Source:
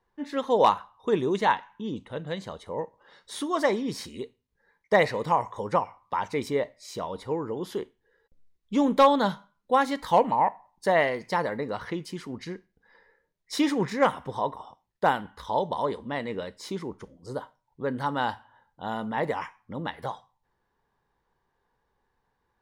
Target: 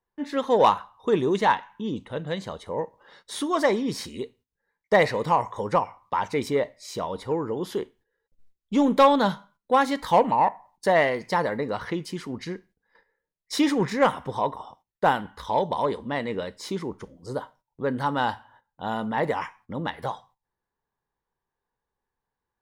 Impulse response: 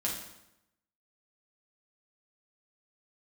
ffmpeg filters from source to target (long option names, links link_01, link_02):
-filter_complex "[0:a]agate=range=-14dB:threshold=-57dB:ratio=16:detection=peak,asplit=2[link_01][link_02];[link_02]asoftclip=type=tanh:threshold=-21dB,volume=-6.5dB[link_03];[link_01][link_03]amix=inputs=2:normalize=0"